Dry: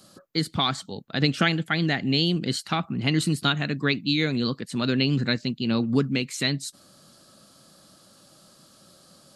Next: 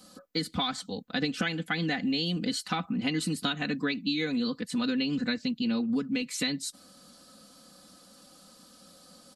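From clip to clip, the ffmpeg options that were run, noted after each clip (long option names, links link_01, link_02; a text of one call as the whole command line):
ffmpeg -i in.wav -af "aecho=1:1:4:0.91,acompressor=threshold=-23dB:ratio=6,volume=-3dB" out.wav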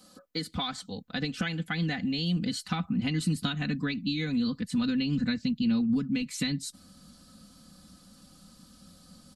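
ffmpeg -i in.wav -af "asubboost=boost=7.5:cutoff=160,volume=-2.5dB" out.wav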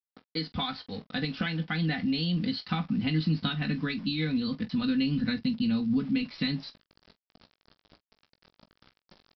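ffmpeg -i in.wav -af "aresample=11025,aeval=exprs='val(0)*gte(abs(val(0)),0.00473)':channel_layout=same,aresample=44100,aecho=1:1:19|45:0.335|0.15" out.wav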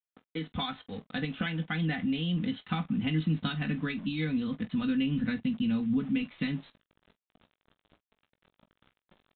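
ffmpeg -i in.wav -filter_complex "[0:a]asplit=2[link_01][link_02];[link_02]aeval=exprs='val(0)*gte(abs(val(0)),0.01)':channel_layout=same,volume=-6dB[link_03];[link_01][link_03]amix=inputs=2:normalize=0,aresample=8000,aresample=44100,volume=-5dB" out.wav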